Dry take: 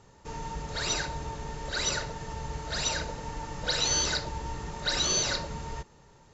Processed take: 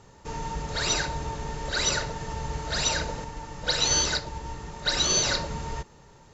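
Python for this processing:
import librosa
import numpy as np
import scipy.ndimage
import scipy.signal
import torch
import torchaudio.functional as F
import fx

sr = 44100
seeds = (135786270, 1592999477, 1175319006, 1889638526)

y = fx.upward_expand(x, sr, threshold_db=-36.0, expansion=1.5, at=(3.24, 5.23))
y = y * 10.0 ** (4.0 / 20.0)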